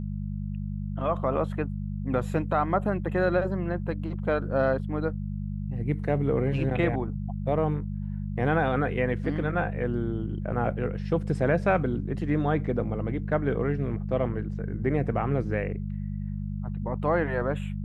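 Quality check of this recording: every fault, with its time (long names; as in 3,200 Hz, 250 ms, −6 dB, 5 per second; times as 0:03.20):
mains hum 50 Hz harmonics 4 −32 dBFS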